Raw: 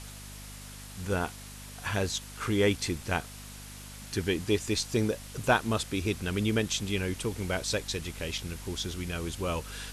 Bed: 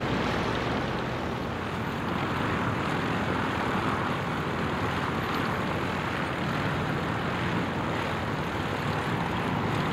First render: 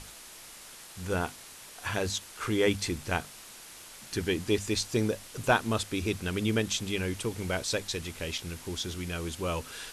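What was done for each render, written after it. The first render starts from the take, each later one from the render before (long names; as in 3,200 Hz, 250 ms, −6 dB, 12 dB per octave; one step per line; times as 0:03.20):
mains-hum notches 50/100/150/200/250 Hz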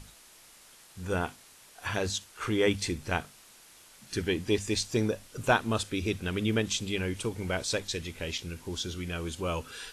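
noise reduction from a noise print 7 dB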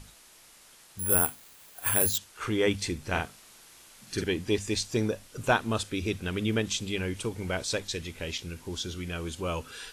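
0:00.99–0:02.18: bad sample-rate conversion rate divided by 4×, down filtered, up zero stuff
0:03.09–0:04.24: double-tracking delay 49 ms −3.5 dB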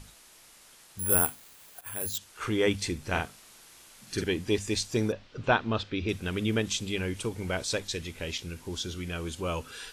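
0:01.81–0:02.29: fade in quadratic, from −14.5 dB
0:05.12–0:06.09: low-pass filter 4,500 Hz 24 dB per octave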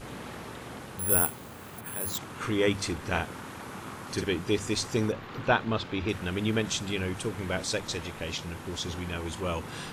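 mix in bed −13.5 dB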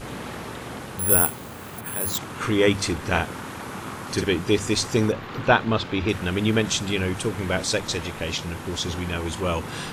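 level +6.5 dB
brickwall limiter −1 dBFS, peak gain reduction 2 dB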